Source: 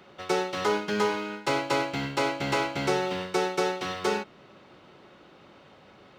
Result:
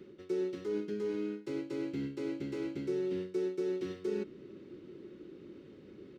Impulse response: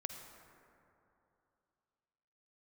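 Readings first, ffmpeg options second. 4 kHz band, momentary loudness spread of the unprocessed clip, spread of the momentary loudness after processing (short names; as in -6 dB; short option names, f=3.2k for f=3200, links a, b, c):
-21.0 dB, 3 LU, 16 LU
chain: -af "equalizer=f=3k:w=1.5:g=-2,areverse,acompressor=threshold=-36dB:ratio=6,areverse,firequalizer=gain_entry='entry(140,0);entry(360,10);entry(690,-20);entry(1800,-9)':delay=0.05:min_phase=1"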